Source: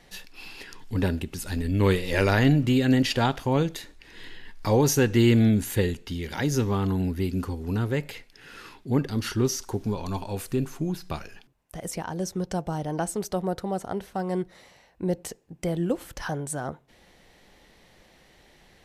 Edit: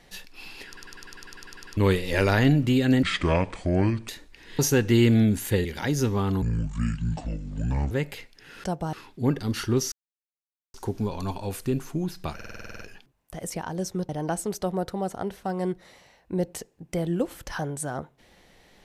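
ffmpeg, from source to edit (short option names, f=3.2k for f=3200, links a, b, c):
-filter_complex "[0:a]asplit=31[a][b][c][d][e][f][g][h][i][j][k][l][m][n][o][p][q][r][s][t][u][v][w][x][y][z][aa][ab][ac][ad][ae];[a]atrim=end=0.772[af];[b]atrim=start=0.668:end=0.772[ag];[c]atrim=start=0.668:end=0.772[ah];[d]atrim=start=0.668:end=0.772[ai];[e]atrim=start=0.668:end=0.772[aj];[f]atrim=start=0.668:end=0.772[ak];[g]atrim=start=0.668:end=0.772[al];[h]atrim=start=0.668:end=0.772[am];[i]atrim=start=0.668:end=0.772[an];[j]atrim=start=0.668:end=0.772[ao];[k]atrim=start=0.668:end=0.772[ap];[l]atrim=start=1.768:end=3.034[aq];[m]atrim=start=3.03:end=3.76,asetpts=PTS-STARTPTS,asetrate=30429,aresample=44100[ar];[n]atrim=start=3.756:end=4.262[as];[o]atrim=start=4.838:end=5.902[at];[p]atrim=start=6.198:end=6.974[au];[q]atrim=start=6.97:end=7.88,asetpts=PTS-STARTPTS,asetrate=26901,aresample=44100[av];[r]atrim=start=7.876:end=8.612[aw];[s]atrim=start=12.498:end=12.792[ax];[t]atrim=start=8.608:end=9.6,asetpts=PTS-STARTPTS,afade=t=out:st=0.988:d=0.004:c=hsin,apad=pad_dur=0.82[ay];[u]atrim=start=9.6:end=11.262,asetpts=PTS-STARTPTS,afade=t=in:d=0.004:c=hsin[az];[v]atrim=start=11.208:end=11.262[ba];[w]atrim=start=11.208:end=11.262[bb];[x]atrim=start=11.208:end=11.262[bc];[y]atrim=start=11.208:end=11.262[bd];[z]atrim=start=11.208:end=11.262[be];[aa]atrim=start=11.208:end=11.262[bf];[ab]atrim=start=11.208:end=11.262[bg];[ac]atrim=start=11.208:end=11.262[bh];[ad]atrim=start=11.208:end=12.502[bi];[ae]atrim=start=12.788[bj];[af][ag]acrossfade=d=0.004:c1=hsin:c2=hsin[bk];[bk][ah]acrossfade=d=0.004:c1=hsin:c2=hsin[bl];[bl][ai]acrossfade=d=0.004:c1=hsin:c2=hsin[bm];[bm][aj]acrossfade=d=0.004:c1=hsin:c2=hsin[bn];[bn][ak]acrossfade=d=0.004:c1=hsin:c2=hsin[bo];[bo][al]acrossfade=d=0.004:c1=hsin:c2=hsin[bp];[bp][am]acrossfade=d=0.004:c1=hsin:c2=hsin[bq];[bq][an]acrossfade=d=0.004:c1=hsin:c2=hsin[br];[br][ao]acrossfade=d=0.004:c1=hsin:c2=hsin[bs];[bs][ap]acrossfade=d=0.004:c1=hsin:c2=hsin[bt];[bt][aq]acrossfade=d=0.004:c1=hsin:c2=hsin[bu];[bu][ar]acrossfade=d=0.004:c1=hsin:c2=hsin[bv];[bv][as]acrossfade=d=0.004:c1=hsin:c2=hsin[bw];[bw][at]acrossfade=d=0.004:c1=hsin:c2=hsin[bx];[bx][au]acrossfade=d=0.004:c1=hsin:c2=hsin[by];[by][av]acrossfade=d=0.004:c1=hsin:c2=hsin[bz];[bz][aw]acrossfade=d=0.004:c1=hsin:c2=hsin[ca];[ca][ax]acrossfade=d=0.004:c1=hsin:c2=hsin[cb];[ay][az]concat=n=2:v=0:a=1[cc];[cb][cc]acrossfade=d=0.004:c1=hsin:c2=hsin[cd];[cd][ba]acrossfade=d=0.004:c1=hsin:c2=hsin[ce];[ce][bb]acrossfade=d=0.004:c1=hsin:c2=hsin[cf];[cf][bc]acrossfade=d=0.004:c1=hsin:c2=hsin[cg];[cg][bd]acrossfade=d=0.004:c1=hsin:c2=hsin[ch];[ch][be]acrossfade=d=0.004:c1=hsin:c2=hsin[ci];[ci][bf]acrossfade=d=0.004:c1=hsin:c2=hsin[cj];[cj][bg]acrossfade=d=0.004:c1=hsin:c2=hsin[ck];[ck][bh]acrossfade=d=0.004:c1=hsin:c2=hsin[cl];[cl][bi]acrossfade=d=0.004:c1=hsin:c2=hsin[cm];[cm][bj]acrossfade=d=0.004:c1=hsin:c2=hsin"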